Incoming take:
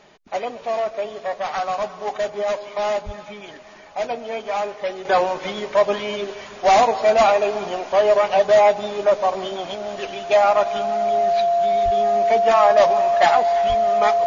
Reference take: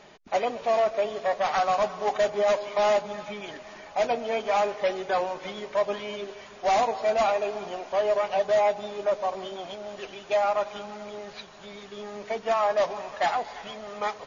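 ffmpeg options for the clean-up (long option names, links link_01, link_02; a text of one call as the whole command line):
ffmpeg -i in.wav -filter_complex "[0:a]bandreject=frequency=690:width=30,asplit=3[link_01][link_02][link_03];[link_01]afade=type=out:start_time=3.05:duration=0.02[link_04];[link_02]highpass=frequency=140:width=0.5412,highpass=frequency=140:width=1.3066,afade=type=in:start_time=3.05:duration=0.02,afade=type=out:start_time=3.17:duration=0.02[link_05];[link_03]afade=type=in:start_time=3.17:duration=0.02[link_06];[link_04][link_05][link_06]amix=inputs=3:normalize=0,asplit=3[link_07][link_08][link_09];[link_07]afade=type=out:start_time=11.84:duration=0.02[link_10];[link_08]highpass=frequency=140:width=0.5412,highpass=frequency=140:width=1.3066,afade=type=in:start_time=11.84:duration=0.02,afade=type=out:start_time=11.96:duration=0.02[link_11];[link_09]afade=type=in:start_time=11.96:duration=0.02[link_12];[link_10][link_11][link_12]amix=inputs=3:normalize=0,asplit=3[link_13][link_14][link_15];[link_13]afade=type=out:start_time=13.68:duration=0.02[link_16];[link_14]highpass=frequency=140:width=0.5412,highpass=frequency=140:width=1.3066,afade=type=in:start_time=13.68:duration=0.02,afade=type=out:start_time=13.8:duration=0.02[link_17];[link_15]afade=type=in:start_time=13.8:duration=0.02[link_18];[link_16][link_17][link_18]amix=inputs=3:normalize=0,asetnsamples=nb_out_samples=441:pad=0,asendcmd='5.05 volume volume -8.5dB',volume=0dB" out.wav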